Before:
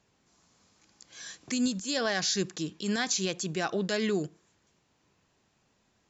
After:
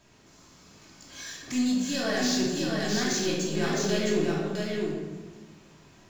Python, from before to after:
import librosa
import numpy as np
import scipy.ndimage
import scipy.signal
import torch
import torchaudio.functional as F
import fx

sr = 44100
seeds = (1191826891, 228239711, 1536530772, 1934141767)

y = fx.power_curve(x, sr, exponent=0.7)
y = y + 10.0 ** (-3.5 / 20.0) * np.pad(y, (int(661 * sr / 1000.0), 0))[:len(y)]
y = fx.room_shoebox(y, sr, seeds[0], volume_m3=870.0, walls='mixed', distance_m=2.8)
y = y * librosa.db_to_amplitude(-8.5)